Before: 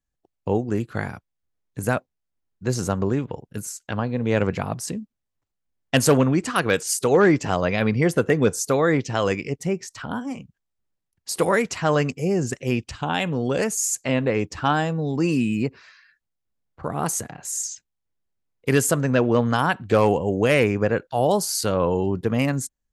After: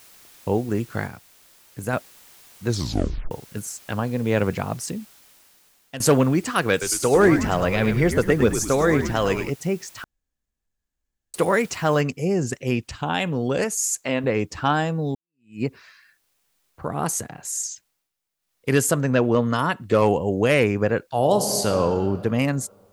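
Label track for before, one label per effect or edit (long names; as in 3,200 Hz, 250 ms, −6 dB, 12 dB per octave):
1.070000	1.930000	clip gain −4 dB
2.660000	2.660000	tape stop 0.65 s
4.840000	6.000000	fade out, to −17 dB
6.710000	9.500000	echo with shifted repeats 104 ms, feedback 44%, per repeat −78 Hz, level −8 dB
10.040000	11.340000	fill with room tone
12.010000	12.010000	noise floor change −50 dB −70 dB
13.640000	14.240000	parametric band 92 Hz −10.5 dB 1.8 octaves
15.150000	15.630000	fade in exponential
17.720000	18.760000	duck −13.5 dB, fades 0.38 s
19.350000	20.020000	notch comb filter 790 Hz
21.150000	21.770000	thrown reverb, RT60 2.3 s, DRR 5.5 dB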